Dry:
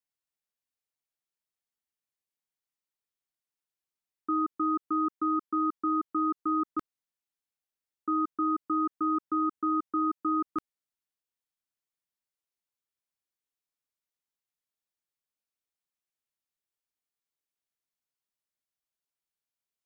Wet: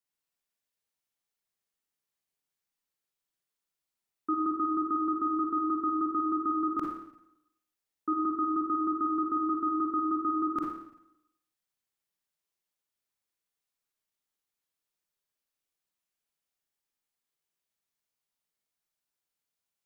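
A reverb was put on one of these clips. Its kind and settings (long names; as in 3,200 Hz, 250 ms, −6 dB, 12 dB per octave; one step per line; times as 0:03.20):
four-comb reverb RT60 0.81 s, DRR −1 dB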